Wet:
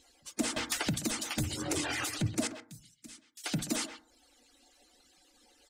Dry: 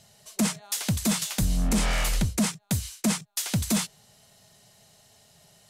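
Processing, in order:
harmonic-percussive split with one part muted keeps percussive
brickwall limiter −25.5 dBFS, peak gain reduction 9 dB
0:02.47–0:03.44: guitar amp tone stack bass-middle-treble 6-0-2
reverb reduction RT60 0.52 s
thirty-one-band graphic EQ 315 Hz +9 dB, 1,000 Hz −5 dB, 12,500 Hz −11 dB
far-end echo of a speakerphone 130 ms, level −9 dB
feedback delay network reverb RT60 0.5 s, low-frequency decay 1.1×, high-frequency decay 0.25×, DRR 10 dB
0:00.56–0:01.83: multiband upward and downward compressor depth 100%
level +2 dB

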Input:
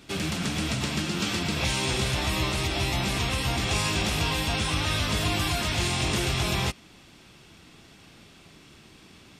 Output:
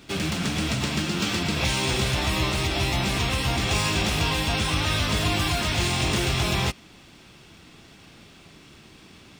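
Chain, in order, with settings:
running median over 3 samples
level +2.5 dB

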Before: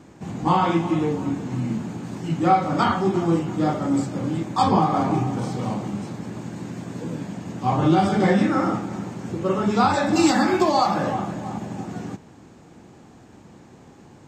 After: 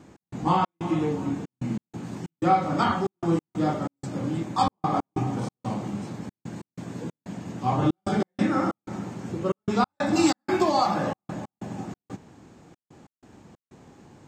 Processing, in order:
gate pattern "x.xx.xxxx." 93 BPM −60 dB
level −3 dB

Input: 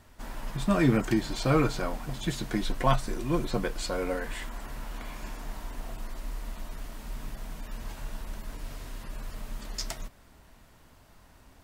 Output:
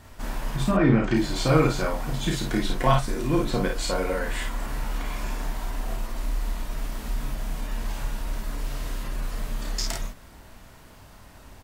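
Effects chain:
0:00.70–0:01.13: low-pass filter 1,800 Hz → 4,400 Hz 12 dB per octave
in parallel at 0 dB: downward compressor, threshold −35 dBFS, peak gain reduction 16.5 dB
on the sum: ambience of single reflections 32 ms −4.5 dB, 53 ms −4.5 dB

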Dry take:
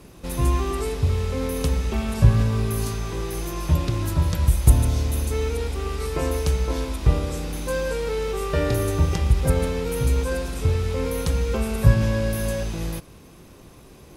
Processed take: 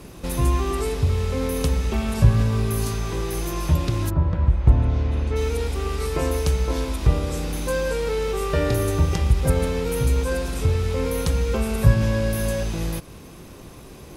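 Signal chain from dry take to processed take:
0:04.09–0:05.35: low-pass filter 1,200 Hz → 2,900 Hz 12 dB per octave
in parallel at 0 dB: downward compressor, threshold −32 dBFS, peak gain reduction 22 dB
on the sum: level −1 dB

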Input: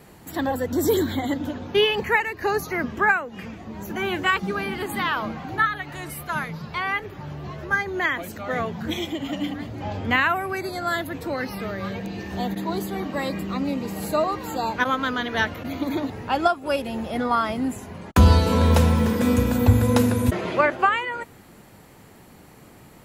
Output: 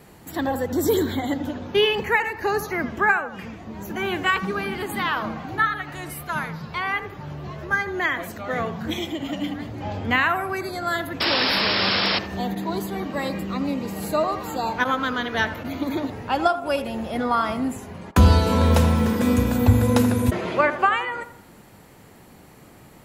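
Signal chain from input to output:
sound drawn into the spectrogram noise, 0:11.20–0:12.19, 200–5,500 Hz −22 dBFS
feedback echo with a band-pass in the loop 82 ms, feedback 46%, band-pass 820 Hz, level −10.5 dB

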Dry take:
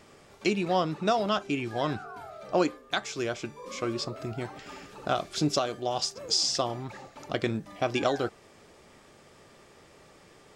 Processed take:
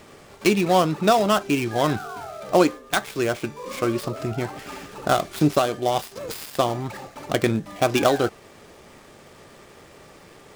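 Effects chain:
gap after every zero crossing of 0.094 ms
level +8 dB

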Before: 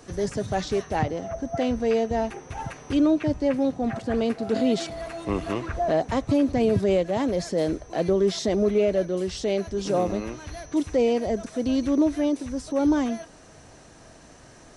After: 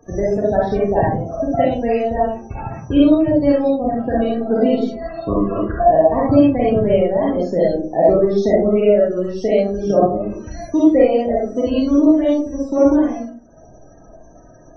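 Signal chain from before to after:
transient designer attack +10 dB, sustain −9 dB
spectral peaks only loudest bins 32
comb and all-pass reverb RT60 0.45 s, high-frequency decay 0.35×, pre-delay 10 ms, DRR −6 dB
level −1.5 dB

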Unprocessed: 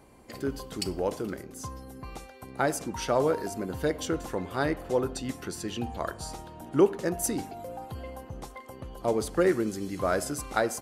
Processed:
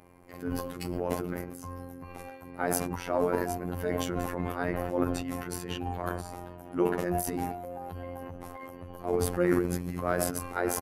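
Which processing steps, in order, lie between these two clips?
flat-topped bell 5,300 Hz −10.5 dB
transient designer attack −4 dB, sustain +11 dB
phases set to zero 88.4 Hz
pitch-shifted copies added −12 semitones −17 dB

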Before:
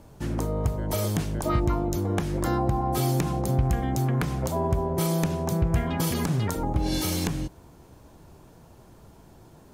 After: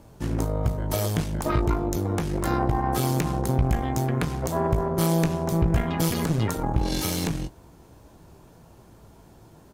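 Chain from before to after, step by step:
double-tracking delay 18 ms −11 dB
harmonic generator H 4 −14 dB, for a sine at −10.5 dBFS

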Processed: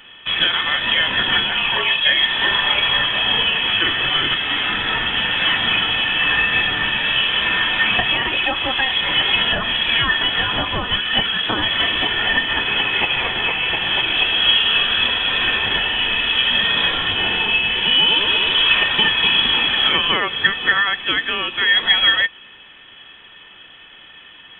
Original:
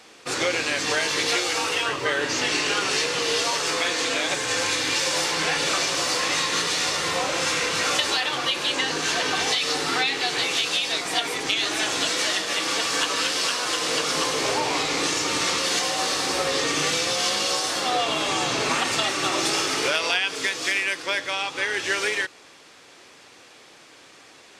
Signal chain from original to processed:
hollow resonant body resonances 400/670/1,100/1,900 Hz, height 16 dB, ringing for 55 ms
voice inversion scrambler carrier 3,700 Hz
level +1.5 dB

